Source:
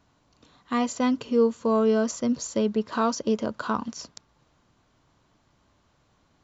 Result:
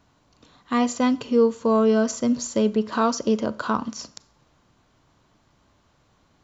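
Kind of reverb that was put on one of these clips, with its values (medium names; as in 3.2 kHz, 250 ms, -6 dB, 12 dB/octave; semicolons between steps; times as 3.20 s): Schroeder reverb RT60 0.52 s, combs from 29 ms, DRR 18 dB; trim +3 dB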